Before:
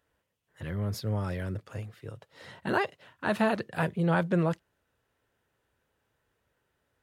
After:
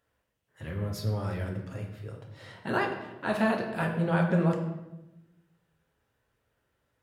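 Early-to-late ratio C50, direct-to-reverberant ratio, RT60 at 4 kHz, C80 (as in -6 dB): 6.0 dB, 1.0 dB, 0.70 s, 8.5 dB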